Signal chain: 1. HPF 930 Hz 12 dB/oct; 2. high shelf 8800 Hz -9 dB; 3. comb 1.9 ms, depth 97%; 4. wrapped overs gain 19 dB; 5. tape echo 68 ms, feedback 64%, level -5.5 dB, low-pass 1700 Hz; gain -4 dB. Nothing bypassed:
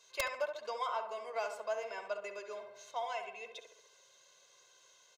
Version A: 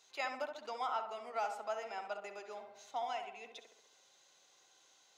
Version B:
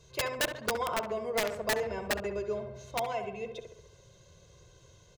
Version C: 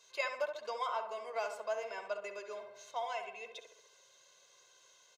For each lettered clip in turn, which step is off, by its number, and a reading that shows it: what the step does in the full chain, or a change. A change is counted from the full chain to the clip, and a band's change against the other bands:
3, 1 kHz band +4.0 dB; 1, 1 kHz band -5.0 dB; 4, distortion -16 dB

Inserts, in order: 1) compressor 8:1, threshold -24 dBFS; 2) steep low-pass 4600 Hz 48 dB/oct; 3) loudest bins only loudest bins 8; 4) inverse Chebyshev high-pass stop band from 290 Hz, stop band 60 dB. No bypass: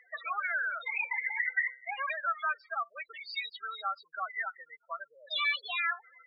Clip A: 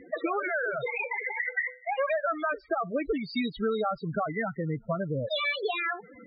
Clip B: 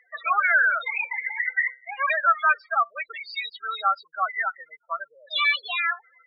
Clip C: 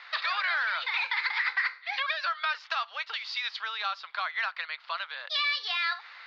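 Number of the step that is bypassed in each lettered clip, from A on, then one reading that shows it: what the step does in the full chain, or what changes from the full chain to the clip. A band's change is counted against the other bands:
4, 500 Hz band +19.5 dB; 1, mean gain reduction 6.5 dB; 3, 4 kHz band +5.0 dB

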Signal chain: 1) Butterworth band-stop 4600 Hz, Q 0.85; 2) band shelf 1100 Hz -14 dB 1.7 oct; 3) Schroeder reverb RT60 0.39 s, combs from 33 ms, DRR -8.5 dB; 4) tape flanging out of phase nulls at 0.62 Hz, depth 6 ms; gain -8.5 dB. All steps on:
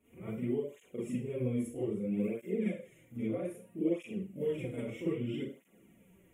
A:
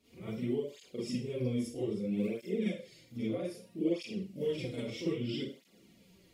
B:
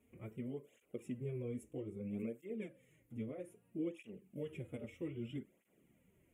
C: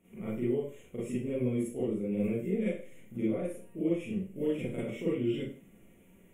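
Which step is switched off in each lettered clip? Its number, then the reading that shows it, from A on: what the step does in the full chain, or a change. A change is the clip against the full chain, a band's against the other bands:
1, 2 kHz band +2.0 dB; 3, 125 Hz band +2.5 dB; 4, loudness change +3.0 LU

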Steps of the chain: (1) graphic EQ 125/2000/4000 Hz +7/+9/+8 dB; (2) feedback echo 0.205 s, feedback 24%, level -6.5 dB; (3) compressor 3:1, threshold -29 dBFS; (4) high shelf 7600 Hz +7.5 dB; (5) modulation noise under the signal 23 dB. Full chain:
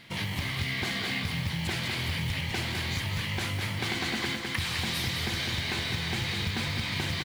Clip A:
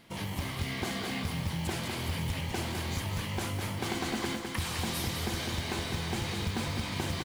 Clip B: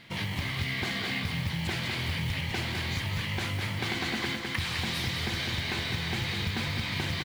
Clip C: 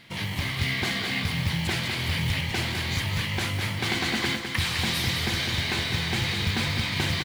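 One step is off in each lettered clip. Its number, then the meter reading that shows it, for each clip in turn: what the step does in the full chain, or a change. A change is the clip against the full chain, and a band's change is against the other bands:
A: 1, crest factor change -2.5 dB; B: 4, 8 kHz band -3.0 dB; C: 3, loudness change +4.0 LU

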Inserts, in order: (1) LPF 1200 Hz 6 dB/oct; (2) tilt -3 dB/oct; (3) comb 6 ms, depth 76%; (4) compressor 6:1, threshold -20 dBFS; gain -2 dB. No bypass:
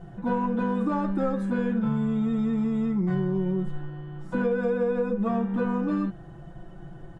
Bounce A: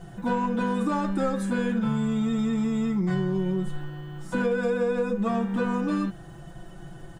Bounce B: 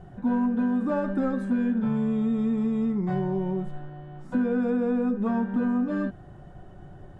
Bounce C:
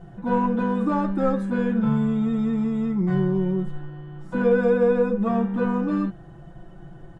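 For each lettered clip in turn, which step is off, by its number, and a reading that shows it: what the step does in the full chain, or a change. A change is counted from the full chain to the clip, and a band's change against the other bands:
1, 2 kHz band +4.0 dB; 3, 250 Hz band +4.0 dB; 4, mean gain reduction 2.5 dB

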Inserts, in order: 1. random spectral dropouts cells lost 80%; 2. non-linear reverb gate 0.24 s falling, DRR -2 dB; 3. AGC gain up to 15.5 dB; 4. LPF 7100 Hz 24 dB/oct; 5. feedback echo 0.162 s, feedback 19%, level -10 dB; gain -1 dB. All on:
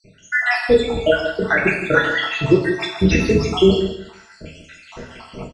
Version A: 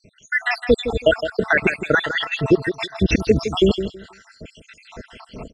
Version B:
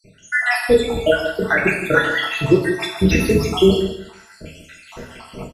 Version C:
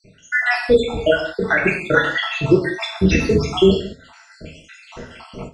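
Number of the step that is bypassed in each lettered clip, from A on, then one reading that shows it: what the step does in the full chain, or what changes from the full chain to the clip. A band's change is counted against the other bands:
2, momentary loudness spread change -10 LU; 4, 8 kHz band +3.5 dB; 5, momentary loudness spread change +3 LU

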